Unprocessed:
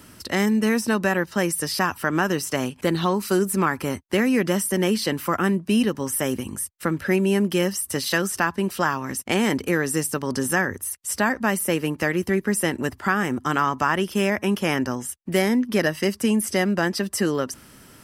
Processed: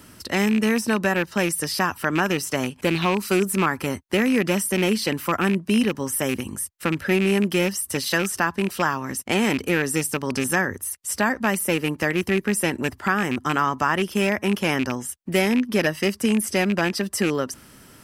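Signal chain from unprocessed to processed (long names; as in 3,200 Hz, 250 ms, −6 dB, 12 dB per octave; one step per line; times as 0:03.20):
loose part that buzzes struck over −25 dBFS, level −17 dBFS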